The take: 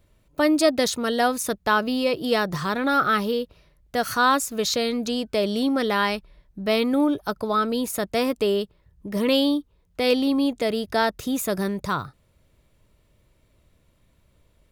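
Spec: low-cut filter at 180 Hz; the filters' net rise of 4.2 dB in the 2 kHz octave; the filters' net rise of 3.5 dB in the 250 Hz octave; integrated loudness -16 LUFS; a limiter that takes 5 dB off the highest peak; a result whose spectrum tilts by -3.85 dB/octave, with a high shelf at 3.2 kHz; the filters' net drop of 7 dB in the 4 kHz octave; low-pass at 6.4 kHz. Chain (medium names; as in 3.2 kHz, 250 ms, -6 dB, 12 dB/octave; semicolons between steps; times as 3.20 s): high-pass 180 Hz; low-pass 6.4 kHz; peaking EQ 250 Hz +5 dB; peaking EQ 2 kHz +9 dB; treble shelf 3.2 kHz -5 dB; peaking EQ 4 kHz -8.5 dB; trim +6 dB; peak limiter -4.5 dBFS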